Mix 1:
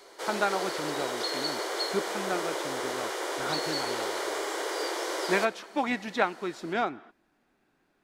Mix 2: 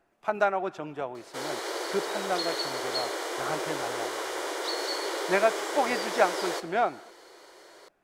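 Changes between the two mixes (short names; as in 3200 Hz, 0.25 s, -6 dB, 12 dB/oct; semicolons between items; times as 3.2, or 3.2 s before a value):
speech: add fifteen-band EQ 250 Hz -6 dB, 630 Hz +7 dB, 4000 Hz -5 dB; background: entry +1.15 s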